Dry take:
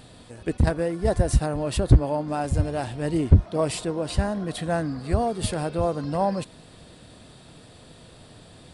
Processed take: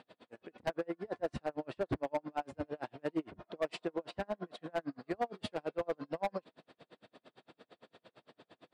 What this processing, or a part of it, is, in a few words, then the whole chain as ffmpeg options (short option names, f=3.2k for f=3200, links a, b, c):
helicopter radio: -af "highpass=310,lowpass=2.8k,aeval=exprs='val(0)*pow(10,-40*(0.5-0.5*cos(2*PI*8.8*n/s))/20)':c=same,asoftclip=type=hard:threshold=-25.5dB,volume=-1.5dB"